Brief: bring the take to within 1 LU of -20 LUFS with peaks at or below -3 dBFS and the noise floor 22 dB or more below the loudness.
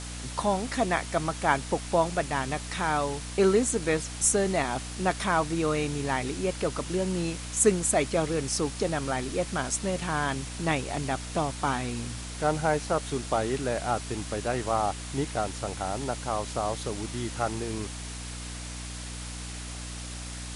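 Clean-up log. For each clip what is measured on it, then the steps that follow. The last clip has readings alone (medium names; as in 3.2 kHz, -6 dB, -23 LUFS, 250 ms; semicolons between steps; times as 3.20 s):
hum 60 Hz; highest harmonic 300 Hz; hum level -37 dBFS; noise floor -38 dBFS; noise floor target -51 dBFS; loudness -29.0 LUFS; peak level -8.5 dBFS; loudness target -20.0 LUFS
-> de-hum 60 Hz, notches 5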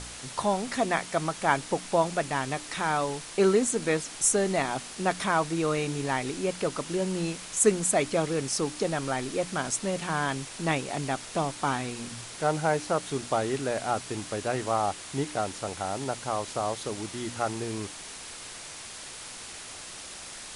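hum not found; noise floor -42 dBFS; noise floor target -51 dBFS
-> noise reduction 9 dB, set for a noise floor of -42 dBFS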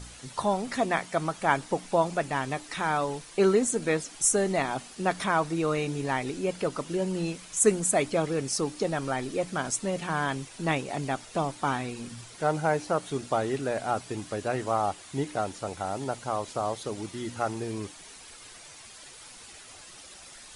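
noise floor -48 dBFS; noise floor target -51 dBFS
-> noise reduction 6 dB, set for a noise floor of -48 dBFS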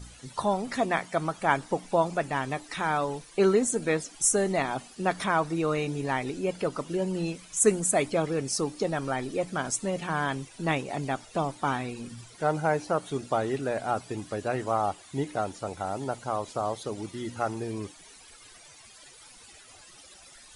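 noise floor -52 dBFS; loudness -29.0 LUFS; peak level -8.5 dBFS; loudness target -20.0 LUFS
-> trim +9 dB; peak limiter -3 dBFS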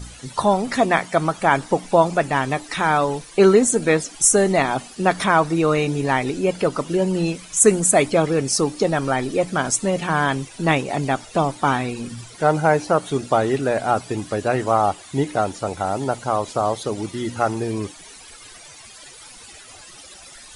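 loudness -20.0 LUFS; peak level -3.0 dBFS; noise floor -43 dBFS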